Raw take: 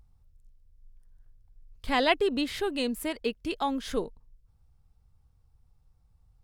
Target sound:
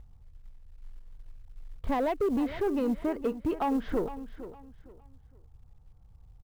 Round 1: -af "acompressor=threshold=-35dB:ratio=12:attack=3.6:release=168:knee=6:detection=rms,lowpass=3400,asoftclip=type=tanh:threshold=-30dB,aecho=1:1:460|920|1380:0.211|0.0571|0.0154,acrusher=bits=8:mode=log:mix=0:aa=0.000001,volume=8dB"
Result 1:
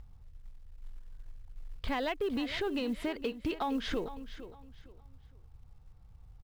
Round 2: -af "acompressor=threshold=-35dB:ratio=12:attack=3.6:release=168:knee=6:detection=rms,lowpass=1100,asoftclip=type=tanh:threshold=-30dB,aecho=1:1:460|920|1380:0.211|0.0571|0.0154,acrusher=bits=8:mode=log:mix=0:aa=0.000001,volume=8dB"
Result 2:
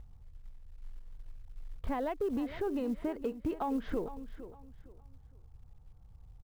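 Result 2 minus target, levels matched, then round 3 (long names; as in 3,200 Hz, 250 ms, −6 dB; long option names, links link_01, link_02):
downward compressor: peak gain reduction +8.5 dB
-af "acompressor=threshold=-26dB:ratio=12:attack=3.6:release=168:knee=6:detection=rms,lowpass=1100,asoftclip=type=tanh:threshold=-30dB,aecho=1:1:460|920|1380:0.211|0.0571|0.0154,acrusher=bits=8:mode=log:mix=0:aa=0.000001,volume=8dB"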